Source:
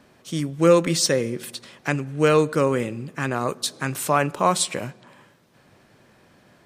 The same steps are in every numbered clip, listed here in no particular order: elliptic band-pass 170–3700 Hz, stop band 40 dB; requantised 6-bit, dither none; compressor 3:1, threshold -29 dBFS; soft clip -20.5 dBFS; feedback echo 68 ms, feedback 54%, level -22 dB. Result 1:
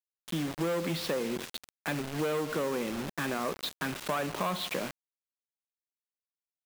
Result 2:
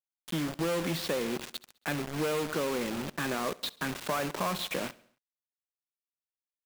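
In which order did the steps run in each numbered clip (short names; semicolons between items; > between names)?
feedback echo > soft clip > elliptic band-pass > requantised > compressor; soft clip > elliptic band-pass > compressor > requantised > feedback echo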